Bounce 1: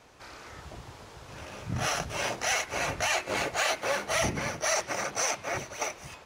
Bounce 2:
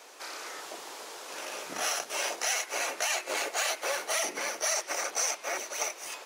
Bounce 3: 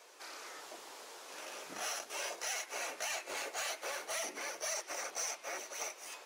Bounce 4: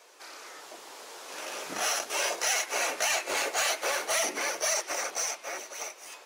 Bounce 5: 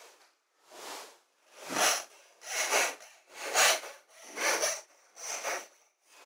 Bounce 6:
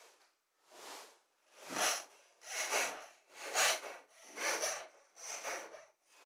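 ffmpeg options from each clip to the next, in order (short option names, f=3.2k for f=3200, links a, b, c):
-af "highpass=f=340:w=0.5412,highpass=f=340:w=1.3066,highshelf=f=5.3k:g=11,acompressor=threshold=-39dB:ratio=2,volume=4.5dB"
-af "asoftclip=type=tanh:threshold=-21.5dB,flanger=delay=1.8:depth=9.1:regen=-54:speed=0.43:shape=sinusoidal,volume=-3.5dB"
-af "dynaudnorm=f=210:g=13:m=8.5dB,volume=2.5dB"
-af "flanger=delay=0.7:depth=7.8:regen=66:speed=2:shape=triangular,aecho=1:1:44|116:0.501|0.141,aeval=exprs='val(0)*pow(10,-36*(0.5-0.5*cos(2*PI*1.1*n/s))/20)':c=same,volume=8dB"
-filter_complex "[0:a]acrossover=split=400[a][b];[a]acrusher=samples=19:mix=1:aa=0.000001[c];[c][b]amix=inputs=2:normalize=0,asplit=2[d][e];[e]adelay=1108,volume=-11dB,highshelf=f=4k:g=-24.9[f];[d][f]amix=inputs=2:normalize=0,volume=-7dB" -ar 32000 -c:a sbc -b:a 192k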